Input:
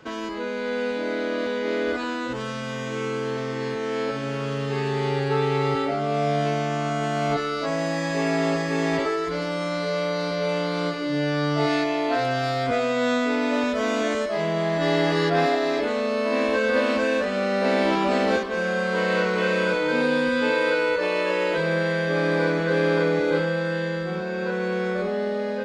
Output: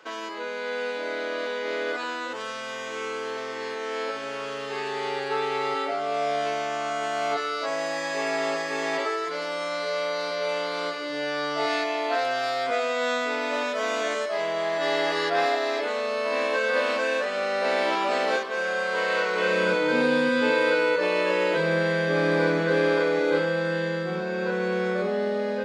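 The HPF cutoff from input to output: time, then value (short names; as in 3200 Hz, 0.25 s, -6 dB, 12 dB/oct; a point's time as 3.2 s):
19.28 s 520 Hz
19.78 s 140 Hz
22.62 s 140 Hz
23.05 s 360 Hz
23.71 s 160 Hz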